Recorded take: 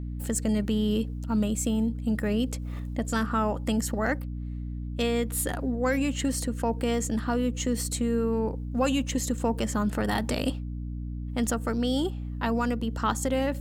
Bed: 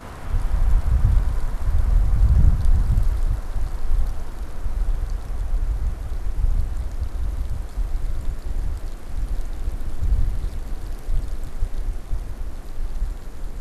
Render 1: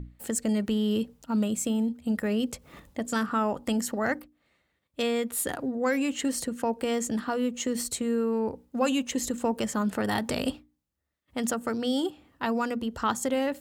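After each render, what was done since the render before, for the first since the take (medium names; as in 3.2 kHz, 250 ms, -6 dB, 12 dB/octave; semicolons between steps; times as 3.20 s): hum notches 60/120/180/240/300 Hz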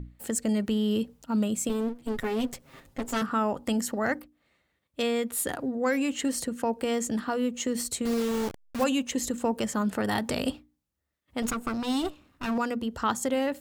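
1.69–3.22 s: comb filter that takes the minimum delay 7.5 ms; 8.05–8.84 s: send-on-delta sampling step -29.5 dBFS; 11.42–12.58 s: comb filter that takes the minimum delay 0.74 ms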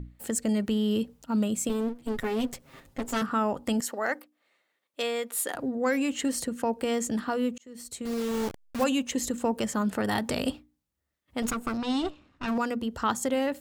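3.80–5.55 s: high-pass 420 Hz; 7.58–8.44 s: fade in linear; 11.77–12.48 s: low-pass 5.8 kHz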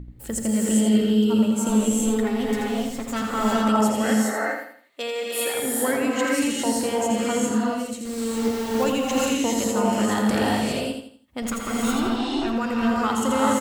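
on a send: feedback delay 83 ms, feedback 36%, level -6 dB; on the sum: gated-style reverb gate 440 ms rising, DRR -4 dB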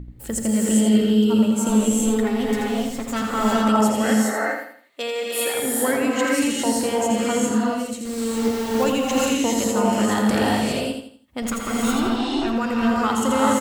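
trim +2 dB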